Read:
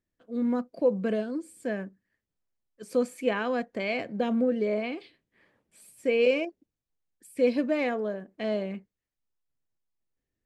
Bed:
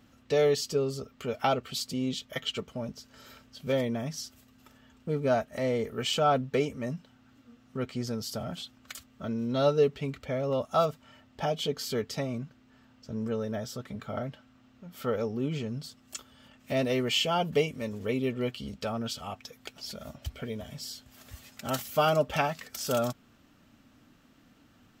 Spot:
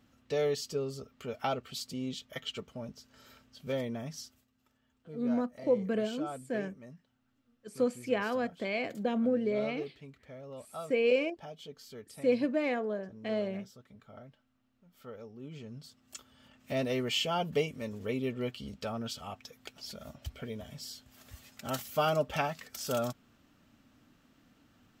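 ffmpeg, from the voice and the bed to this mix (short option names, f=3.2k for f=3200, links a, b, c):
-filter_complex "[0:a]adelay=4850,volume=-3.5dB[a];[1:a]volume=6.5dB,afade=t=out:st=4.2:d=0.28:silence=0.298538,afade=t=in:st=15.36:d=1.16:silence=0.237137[b];[a][b]amix=inputs=2:normalize=0"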